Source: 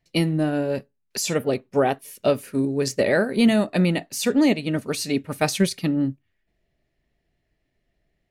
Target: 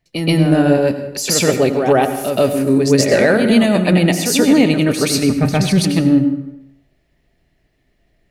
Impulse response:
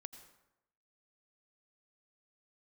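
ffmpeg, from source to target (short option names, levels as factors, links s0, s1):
-filter_complex "[0:a]asettb=1/sr,asplit=3[s0][s1][s2];[s0]atrim=end=5.104[s3];[s1]atrim=start=5.1:end=5.69,asetpts=PTS-STARTPTS,afade=t=in:d=0.004:c=qsin,afade=t=out:st=0.586:d=0.004:c=qsin,bass=f=250:g=9,treble=f=4000:g=-12[s4];[s2]atrim=start=5.686[s5];[s3][s4]acrossfade=d=0.004:c1=hsin:c2=qsin[s6];[s6][s5]acrossfade=d=0.004:c1=qsin:c2=hsin,alimiter=limit=0.178:level=0:latency=1:release=11,asplit=2[s7][s8];[1:a]atrim=start_sample=2205,adelay=127[s9];[s8][s9]afir=irnorm=-1:irlink=0,volume=4.22[s10];[s7][s10]amix=inputs=2:normalize=0,volume=1.41"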